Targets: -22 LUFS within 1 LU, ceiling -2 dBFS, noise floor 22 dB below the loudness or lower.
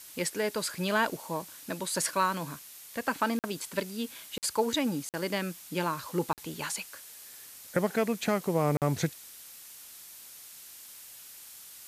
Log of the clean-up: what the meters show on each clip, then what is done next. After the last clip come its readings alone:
dropouts 5; longest dropout 48 ms; noise floor -49 dBFS; noise floor target -54 dBFS; loudness -31.5 LUFS; peak -12.5 dBFS; loudness target -22.0 LUFS
-> interpolate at 3.39/4.38/5.09/6.33/8.77, 48 ms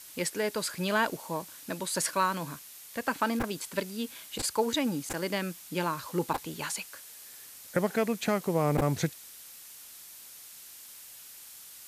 dropouts 0; noise floor -49 dBFS; noise floor target -53 dBFS
-> denoiser 6 dB, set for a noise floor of -49 dBFS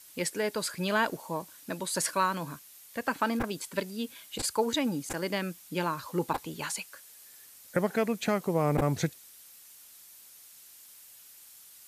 noise floor -53 dBFS; noise floor target -54 dBFS
-> denoiser 6 dB, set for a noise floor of -53 dBFS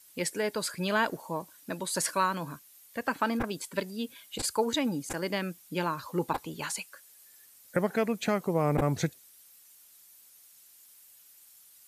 noise floor -57 dBFS; loudness -31.5 LUFS; peak -13.0 dBFS; loudness target -22.0 LUFS
-> gain +9.5 dB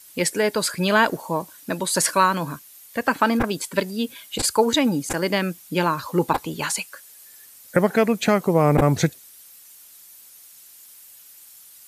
loudness -22.0 LUFS; peak -3.5 dBFS; noise floor -48 dBFS

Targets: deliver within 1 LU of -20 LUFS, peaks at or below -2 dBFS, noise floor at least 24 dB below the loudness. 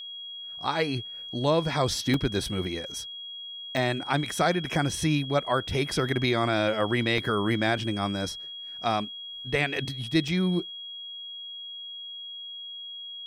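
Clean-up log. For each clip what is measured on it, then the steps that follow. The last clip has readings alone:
dropouts 4; longest dropout 2.4 ms; steady tone 3300 Hz; tone level -37 dBFS; loudness -28.5 LUFS; peak -11.5 dBFS; loudness target -20.0 LUFS
-> interpolate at 2.14/3.77/7.18/10.28, 2.4 ms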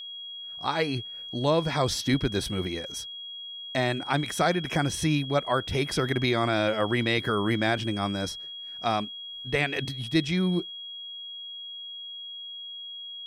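dropouts 0; steady tone 3300 Hz; tone level -37 dBFS
-> notch 3300 Hz, Q 30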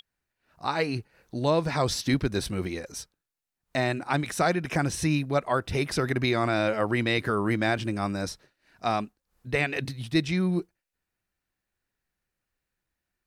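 steady tone none; loudness -27.5 LUFS; peak -12.0 dBFS; loudness target -20.0 LUFS
-> gain +7.5 dB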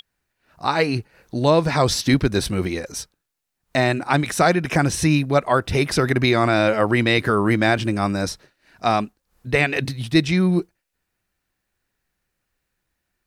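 loudness -20.0 LUFS; peak -4.5 dBFS; noise floor -78 dBFS

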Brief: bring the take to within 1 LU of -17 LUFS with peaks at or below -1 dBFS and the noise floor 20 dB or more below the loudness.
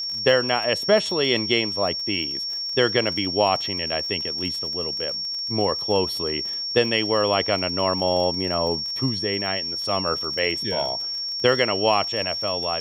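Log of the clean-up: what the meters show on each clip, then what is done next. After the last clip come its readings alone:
ticks 28/s; steady tone 5500 Hz; tone level -26 dBFS; loudness -22.0 LUFS; peak -4.0 dBFS; loudness target -17.0 LUFS
-> de-click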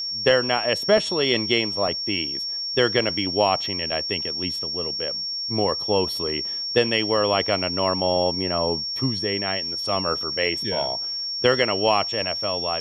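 ticks 0.078/s; steady tone 5500 Hz; tone level -26 dBFS
-> notch 5500 Hz, Q 30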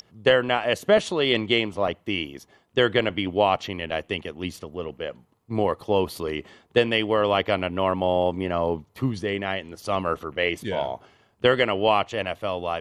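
steady tone none; loudness -24.5 LUFS; peak -4.5 dBFS; loudness target -17.0 LUFS
-> gain +7.5 dB; limiter -1 dBFS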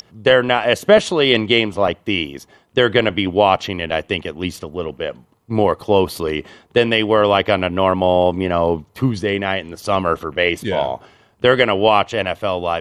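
loudness -17.5 LUFS; peak -1.0 dBFS; noise floor -55 dBFS

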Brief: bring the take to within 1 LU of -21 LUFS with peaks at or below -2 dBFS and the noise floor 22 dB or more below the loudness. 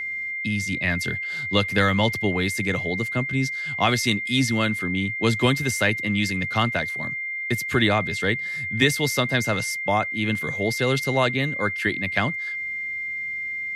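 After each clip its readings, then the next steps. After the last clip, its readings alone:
steady tone 2100 Hz; tone level -27 dBFS; loudness -23.0 LUFS; peak -5.5 dBFS; loudness target -21.0 LUFS
-> notch 2100 Hz, Q 30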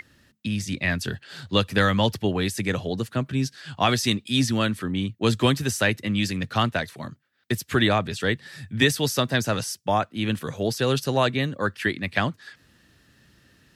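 steady tone none; loudness -24.5 LUFS; peak -6.0 dBFS; loudness target -21.0 LUFS
-> gain +3.5 dB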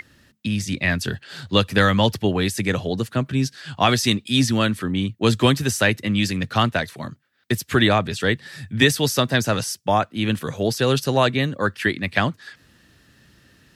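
loudness -21.0 LUFS; peak -2.5 dBFS; noise floor -58 dBFS

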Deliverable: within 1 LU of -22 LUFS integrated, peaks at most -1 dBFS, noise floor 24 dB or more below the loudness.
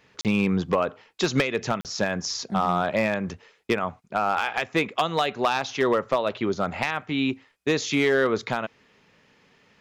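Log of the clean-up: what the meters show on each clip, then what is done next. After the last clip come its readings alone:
clipped 0.3%; flat tops at -13.5 dBFS; dropouts 2; longest dropout 38 ms; loudness -25.5 LUFS; peak -13.5 dBFS; loudness target -22.0 LUFS
-> clip repair -13.5 dBFS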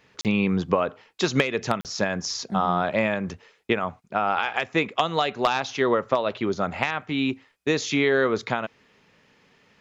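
clipped 0.0%; dropouts 2; longest dropout 38 ms
-> interpolate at 0.21/1.81, 38 ms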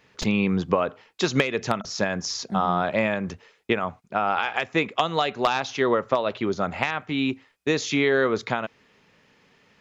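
dropouts 0; loudness -25.0 LUFS; peak -4.5 dBFS; loudness target -22.0 LUFS
-> gain +3 dB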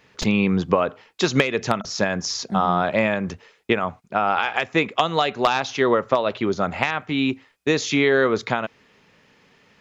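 loudness -22.0 LUFS; peak -1.5 dBFS; noise floor -58 dBFS

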